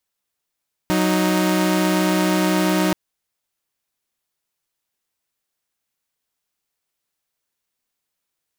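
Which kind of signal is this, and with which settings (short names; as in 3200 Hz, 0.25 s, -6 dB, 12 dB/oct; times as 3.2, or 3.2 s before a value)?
chord F#3/D#4 saw, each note -16.5 dBFS 2.03 s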